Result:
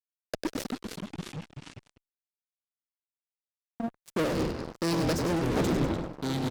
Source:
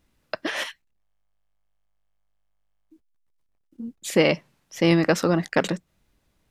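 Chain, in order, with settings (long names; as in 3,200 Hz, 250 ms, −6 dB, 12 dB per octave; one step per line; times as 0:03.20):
flat-topped bell 1,600 Hz −14.5 dB 2.5 octaves
power curve on the samples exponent 2
on a send at −21.5 dB: low-shelf EQ 150 Hz +2.5 dB + convolution reverb RT60 2.8 s, pre-delay 3 ms
on the sum: rotating-speaker cabinet horn 0.75 Hz
reversed playback
downward compressor 16 to 1, threshold −36 dBFS, peak gain reduction 17.5 dB
reversed playback
echo with shifted repeats 98 ms, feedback 46%, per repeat −42 Hz, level −10 dB
fuzz pedal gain 53 dB, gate −60 dBFS
delay with pitch and tempo change per echo 154 ms, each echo −4 semitones, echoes 3
amplitude modulation by smooth noise, depth 55%
level −9 dB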